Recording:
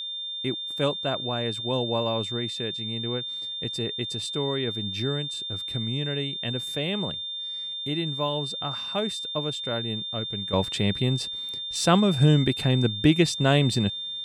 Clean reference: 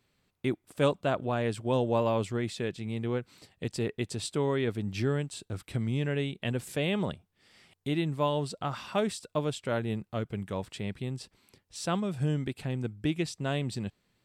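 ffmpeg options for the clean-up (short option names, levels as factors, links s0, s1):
-af "bandreject=f=3600:w=30,asetnsamples=n=441:p=0,asendcmd='10.53 volume volume -10.5dB',volume=1"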